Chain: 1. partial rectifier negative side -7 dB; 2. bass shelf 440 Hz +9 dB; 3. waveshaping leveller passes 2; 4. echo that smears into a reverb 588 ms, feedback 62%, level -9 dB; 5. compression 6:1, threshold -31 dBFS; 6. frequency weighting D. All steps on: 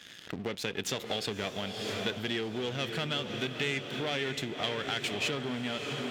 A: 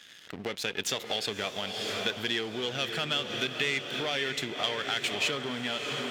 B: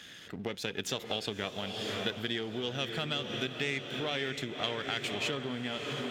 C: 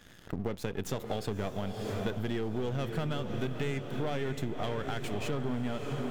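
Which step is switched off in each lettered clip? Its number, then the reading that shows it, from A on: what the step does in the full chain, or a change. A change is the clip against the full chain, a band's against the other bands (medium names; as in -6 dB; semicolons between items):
2, 125 Hz band -7.0 dB; 3, loudness change -1.0 LU; 6, 4 kHz band -11.5 dB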